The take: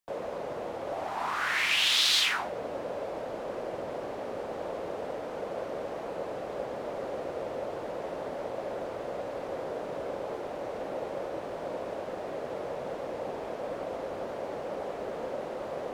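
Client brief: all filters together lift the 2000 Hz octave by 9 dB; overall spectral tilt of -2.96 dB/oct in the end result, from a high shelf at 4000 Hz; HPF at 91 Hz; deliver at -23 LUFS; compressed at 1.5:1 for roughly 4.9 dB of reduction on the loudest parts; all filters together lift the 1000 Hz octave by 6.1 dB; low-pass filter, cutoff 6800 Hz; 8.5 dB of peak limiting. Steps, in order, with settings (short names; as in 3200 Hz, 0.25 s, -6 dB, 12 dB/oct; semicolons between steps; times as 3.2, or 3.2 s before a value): HPF 91 Hz; LPF 6800 Hz; bell 1000 Hz +5.5 dB; bell 2000 Hz +8 dB; high shelf 4000 Hz +7 dB; compressor 1.5:1, threshold -29 dBFS; gain +9.5 dB; limiter -10.5 dBFS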